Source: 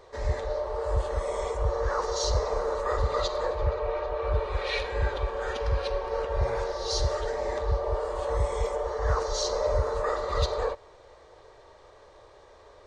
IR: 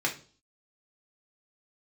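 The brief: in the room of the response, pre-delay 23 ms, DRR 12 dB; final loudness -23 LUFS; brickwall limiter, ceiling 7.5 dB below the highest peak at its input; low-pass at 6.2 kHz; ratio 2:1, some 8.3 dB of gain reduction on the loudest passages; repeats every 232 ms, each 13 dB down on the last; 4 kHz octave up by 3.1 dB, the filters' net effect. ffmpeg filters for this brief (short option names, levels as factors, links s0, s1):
-filter_complex "[0:a]lowpass=6200,equalizer=f=4000:t=o:g=4.5,acompressor=threshold=0.0158:ratio=2,alimiter=level_in=1.78:limit=0.0631:level=0:latency=1,volume=0.562,aecho=1:1:232|464|696:0.224|0.0493|0.0108,asplit=2[s0][s1];[1:a]atrim=start_sample=2205,adelay=23[s2];[s1][s2]afir=irnorm=-1:irlink=0,volume=0.0944[s3];[s0][s3]amix=inputs=2:normalize=0,volume=5.62"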